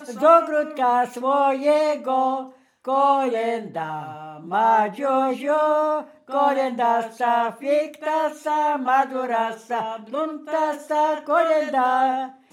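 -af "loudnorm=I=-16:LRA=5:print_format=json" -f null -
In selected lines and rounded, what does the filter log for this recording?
"input_i" : "-21.7",
"input_tp" : "-4.2",
"input_lra" : "1.4",
"input_thresh" : "-31.8",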